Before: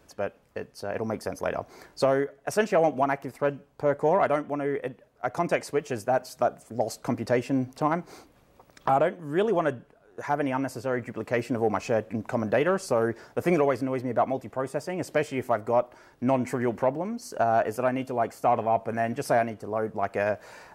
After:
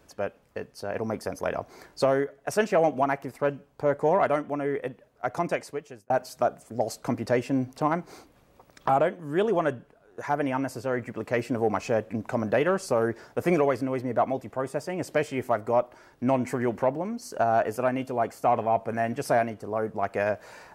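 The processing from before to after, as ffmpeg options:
ffmpeg -i in.wav -filter_complex "[0:a]asplit=2[link_01][link_02];[link_01]atrim=end=6.1,asetpts=PTS-STARTPTS,afade=type=out:start_time=5.34:duration=0.76[link_03];[link_02]atrim=start=6.1,asetpts=PTS-STARTPTS,afade=type=in:duration=0.004:curve=hsin[link_04];[link_03][link_04]concat=n=2:v=0:a=1" out.wav

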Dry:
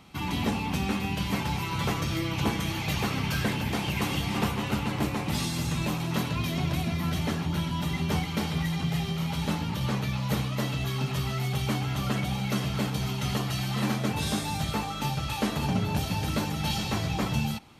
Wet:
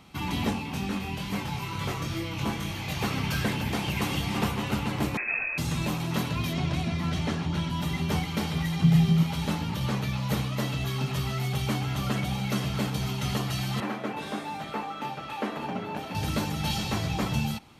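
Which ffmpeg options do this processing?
ffmpeg -i in.wav -filter_complex "[0:a]asplit=3[link_01][link_02][link_03];[link_01]afade=type=out:start_time=0.52:duration=0.02[link_04];[link_02]flanger=delay=20:depth=3.4:speed=2.2,afade=type=in:start_time=0.52:duration=0.02,afade=type=out:start_time=3:duration=0.02[link_05];[link_03]afade=type=in:start_time=3:duration=0.02[link_06];[link_04][link_05][link_06]amix=inputs=3:normalize=0,asettb=1/sr,asplit=3[link_07][link_08][link_09];[link_07]atrim=end=5.174[link_10];[link_08]atrim=start=5.17:end=5.58,asetpts=PTS-STARTPTS,afade=type=in:duration=0.004:curve=qsin,afade=type=out:start_time=0.406:duration=0.004:curve=qsin,lowpass=frequency=2300:width_type=q:width=0.5098,lowpass=frequency=2300:width_type=q:width=0.6013,lowpass=frequency=2300:width_type=q:width=0.9,lowpass=frequency=2300:width_type=q:width=2.563,afreqshift=-2700[link_11];[link_09]atrim=start=5.576[link_12];[link_10][link_11]acrossfade=duration=0.004:curve1=hsin:curve2=qsin[link_13];[link_13][link_12]acrossfade=duration=0.004:curve1=qsin:curve2=hsin,asettb=1/sr,asplit=3[link_14][link_15][link_16];[link_14]atrim=end=6.534[link_17];[link_15]atrim=start=6.53:end=7.7,asetpts=PTS-STARTPTS,afade=type=in:duration=0.004:curve=qsin,afade=type=out:start_time=1.166:duration=0.004:curve=qsin,lowpass=7500[link_18];[link_16]atrim=start=7.696[link_19];[link_17][link_18]acrossfade=duration=0.004:curve1=hsin:curve2=qsin[link_20];[link_20][link_19]acrossfade=duration=0.004:curve1=qsin:curve2=hsin,asettb=1/sr,asplit=3[link_21][link_22][link_23];[link_21]atrim=end=8.824[link_24];[link_22]atrim=start=8.82:end=9.23,asetpts=PTS-STARTPTS,afade=type=in:duration=0.004:curve=qsin,afade=type=out:start_time=0.406:duration=0.004:curve=qsin,equalizer=frequency=170:width=1.5:gain=10.5[link_25];[link_23]atrim=start=9.226[link_26];[link_24][link_25]acrossfade=duration=0.004:curve1=hsin:curve2=qsin[link_27];[link_27][link_26]acrossfade=duration=0.004:curve1=qsin:curve2=hsin,asettb=1/sr,asplit=3[link_28][link_29][link_30];[link_28]atrim=end=13.804[link_31];[link_29]atrim=start=13.8:end=16.15,asetpts=PTS-STARTPTS,afade=type=in:duration=0.004:curve=qsin,afade=type=out:start_time=2.346:duration=0.004:curve=qsin,acrossover=split=220 2700:gain=0.0708 1 0.178[link_32][link_33][link_34];[link_32][link_33][link_34]amix=inputs=3:normalize=0[link_35];[link_30]atrim=start=16.146[link_36];[link_31][link_35]acrossfade=duration=0.004:curve1=hsin:curve2=qsin[link_37];[link_37][link_36]acrossfade=duration=0.004:curve1=qsin:curve2=hsin" out.wav

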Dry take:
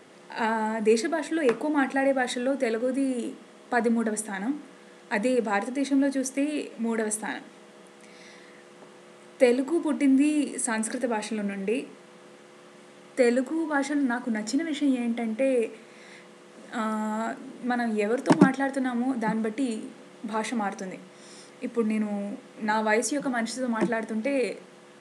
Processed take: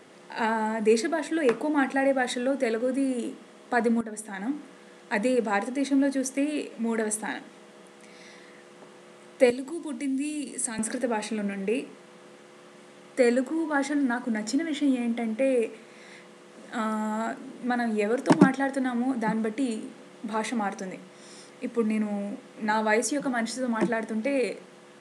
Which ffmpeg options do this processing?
ffmpeg -i in.wav -filter_complex "[0:a]asettb=1/sr,asplit=3[link_01][link_02][link_03];[link_01]atrim=end=9.504[link_04];[link_02]atrim=start=9.5:end=10.79,asetpts=PTS-STARTPTS,afade=type=in:duration=0.004:curve=qsin,afade=type=out:start_time=1.286:duration=0.004:curve=qsin,acrossover=split=190|3000[link_05][link_06][link_07];[link_06]acompressor=threshold=-43dB:ratio=2:attack=3.2:release=140:knee=2.83:detection=peak[link_08];[link_05][link_08][link_07]amix=inputs=3:normalize=0[link_09];[link_03]atrim=start=10.786[link_10];[link_04][link_09]acrossfade=duration=0.004:curve1=hsin:curve2=qsin[link_11];[link_11][link_10]acrossfade=duration=0.004:curve1=qsin:curve2=hsin,asplit=2[link_12][link_13];[link_12]atrim=end=4.01,asetpts=PTS-STARTPTS,afade=type=out:start_time=4.006:duration=0.004:curve=hsin:silence=0.237137[link_14];[link_13]atrim=start=4.01,asetpts=PTS-STARTPTS,afade=type=in:duration=0.58:silence=0.237137[link_15];[link_14][link_15]concat=n=2:v=0:a=1" out.wav

